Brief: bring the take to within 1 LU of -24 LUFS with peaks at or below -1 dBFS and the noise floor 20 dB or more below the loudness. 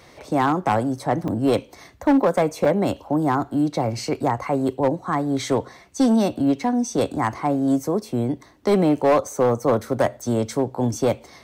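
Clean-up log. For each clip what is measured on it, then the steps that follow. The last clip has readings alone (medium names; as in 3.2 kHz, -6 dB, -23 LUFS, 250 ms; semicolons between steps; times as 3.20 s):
clipped samples 1.5%; clipping level -12.0 dBFS; dropouts 2; longest dropout 4.4 ms; loudness -22.0 LUFS; peak level -12.0 dBFS; loudness target -24.0 LUFS
-> clip repair -12 dBFS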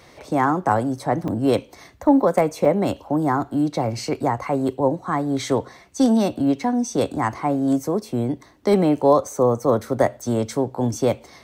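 clipped samples 0.0%; dropouts 2; longest dropout 4.4 ms
-> interpolate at 1.28/2.65 s, 4.4 ms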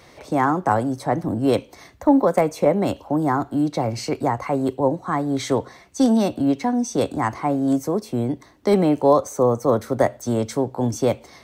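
dropouts 0; loudness -21.5 LUFS; peak level -4.0 dBFS; loudness target -24.0 LUFS
-> trim -2.5 dB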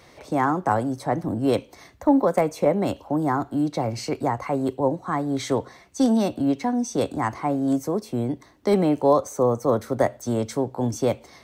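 loudness -24.0 LUFS; peak level -6.5 dBFS; noise floor -52 dBFS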